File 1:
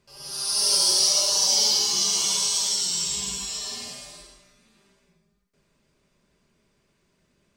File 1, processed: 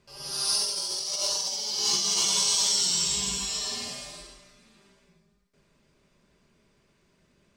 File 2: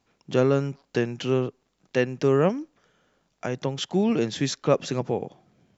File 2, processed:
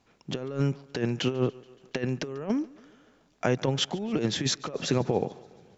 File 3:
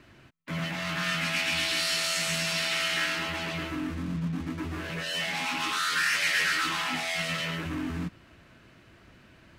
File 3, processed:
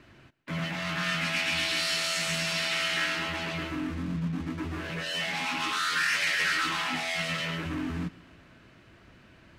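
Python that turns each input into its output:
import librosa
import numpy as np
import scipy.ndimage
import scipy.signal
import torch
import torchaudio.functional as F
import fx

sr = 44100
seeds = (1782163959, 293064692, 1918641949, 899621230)

y = fx.high_shelf(x, sr, hz=8900.0, db=-6.5)
y = fx.over_compress(y, sr, threshold_db=-26.0, ratio=-0.5)
y = fx.echo_thinned(y, sr, ms=142, feedback_pct=63, hz=150.0, wet_db=-22.5)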